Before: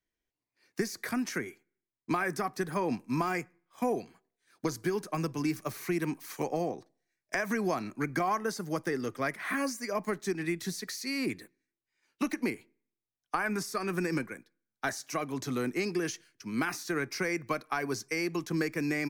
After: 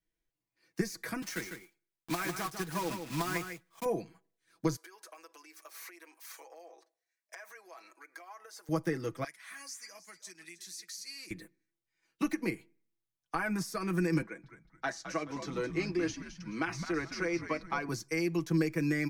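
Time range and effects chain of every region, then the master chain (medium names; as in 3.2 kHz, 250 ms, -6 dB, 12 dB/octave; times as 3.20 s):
1.22–3.86 s: block-companded coder 3-bit + bass shelf 490 Hz -8 dB + delay 151 ms -7.5 dB
4.76–8.69 s: compression 12:1, threshold -39 dBFS + Bessel high-pass 720 Hz, order 6
9.24–11.31 s: band-pass filter 7 kHz, Q 0.88 + delay 312 ms -15.5 dB
14.22–17.89 s: three-band isolator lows -15 dB, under 210 Hz, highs -22 dB, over 7.1 kHz + frequency-shifting echo 213 ms, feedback 32%, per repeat -89 Hz, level -9.5 dB
whole clip: bass shelf 190 Hz +8 dB; comb 6.1 ms, depth 68%; trim -4.5 dB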